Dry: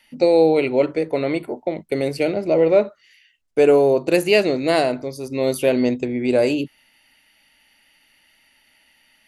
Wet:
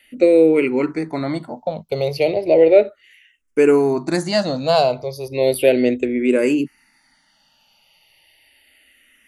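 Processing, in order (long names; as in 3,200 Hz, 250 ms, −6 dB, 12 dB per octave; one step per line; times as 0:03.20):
frequency shifter mixed with the dry sound −0.34 Hz
level +4.5 dB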